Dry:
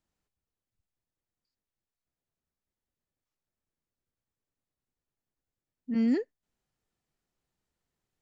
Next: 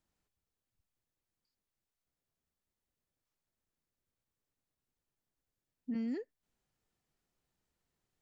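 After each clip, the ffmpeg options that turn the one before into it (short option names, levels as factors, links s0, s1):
-af "acompressor=threshold=0.0178:ratio=6"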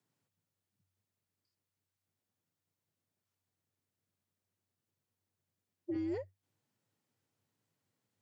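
-af "aeval=exprs='0.0355*(cos(1*acos(clip(val(0)/0.0355,-1,1)))-cos(1*PI/2))+0.00708*(cos(2*acos(clip(val(0)/0.0355,-1,1)))-cos(2*PI/2))':c=same,afreqshift=94"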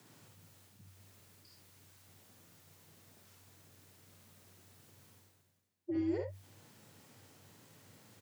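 -af "areverse,acompressor=mode=upward:threshold=0.00708:ratio=2.5,areverse,aecho=1:1:52|71:0.501|0.422"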